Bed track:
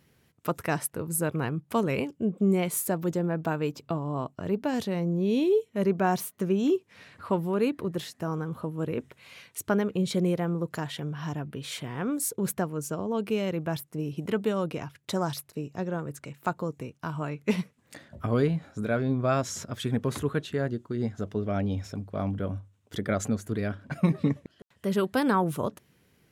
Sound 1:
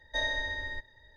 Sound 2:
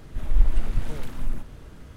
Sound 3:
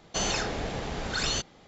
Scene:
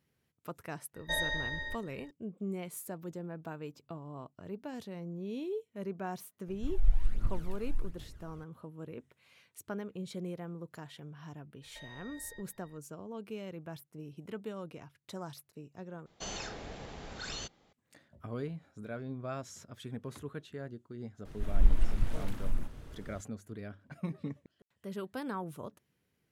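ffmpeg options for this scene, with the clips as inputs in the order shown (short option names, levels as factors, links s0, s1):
-filter_complex "[1:a]asplit=2[s0][s1];[2:a]asplit=2[s2][s3];[0:a]volume=0.2[s4];[s2]aphaser=in_gain=1:out_gain=1:delay=1.6:decay=0.63:speed=1.3:type=triangular[s5];[s1]acompressor=threshold=0.00891:ratio=6:attack=3.2:release=140:knee=1:detection=peak[s6];[s4]asplit=2[s7][s8];[s7]atrim=end=16.064[s9];[3:a]atrim=end=1.67,asetpts=PTS-STARTPTS,volume=0.251[s10];[s8]atrim=start=17.726[s11];[s0]atrim=end=1.16,asetpts=PTS-STARTPTS,volume=0.794,afade=t=in:d=0.004:c=hsin,afade=t=out:st=1.156:d=0.004:c=hsin,adelay=950[s12];[s5]atrim=end=1.96,asetpts=PTS-STARTPTS,volume=0.178,afade=t=in:d=0.004:c=hsin,afade=t=out:st=1.956:d=0.004:c=hsin,adelay=6480[s13];[s6]atrim=end=1.16,asetpts=PTS-STARTPTS,volume=0.398,afade=t=in:d=0.004:c=hsin,afade=t=out:st=1.156:d=0.004:c=hsin,adelay=512442S[s14];[s3]atrim=end=1.96,asetpts=PTS-STARTPTS,volume=0.562,afade=t=in:d=0.004:c=hsin,afade=t=out:st=1.956:d=0.004:c=hsin,adelay=21250[s15];[s9][s10]acrossfade=d=0.004:c1=hsin:c2=hsin[s16];[s16][s11]acrossfade=d=0.004:c1=hsin:c2=hsin[s17];[s17][s12][s13][s14][s15]amix=inputs=5:normalize=0"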